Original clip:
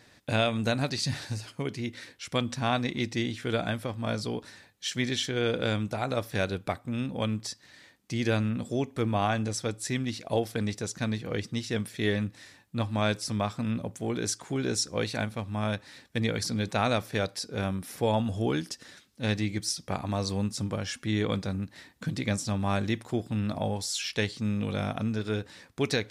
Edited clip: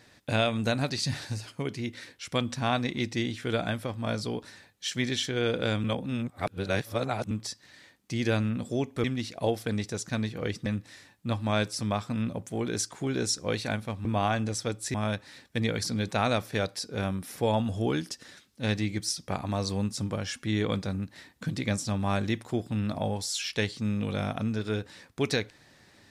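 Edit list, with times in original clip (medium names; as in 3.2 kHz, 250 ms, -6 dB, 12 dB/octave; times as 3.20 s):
5.84–7.31 s: reverse
9.04–9.93 s: move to 15.54 s
11.55–12.15 s: delete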